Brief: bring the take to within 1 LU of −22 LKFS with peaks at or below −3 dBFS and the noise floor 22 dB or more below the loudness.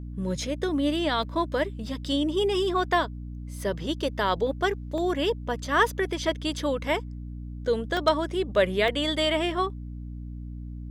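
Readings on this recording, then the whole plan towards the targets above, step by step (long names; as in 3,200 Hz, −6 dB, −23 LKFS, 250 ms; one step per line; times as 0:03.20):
number of dropouts 4; longest dropout 1.2 ms; mains hum 60 Hz; hum harmonics up to 300 Hz; level of the hum −34 dBFS; integrated loudness −26.5 LKFS; sample peak −9.5 dBFS; target loudness −22.0 LKFS
→ repair the gap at 0:01.23/0:04.98/0:07.97/0:08.88, 1.2 ms
mains-hum notches 60/120/180/240/300 Hz
level +4.5 dB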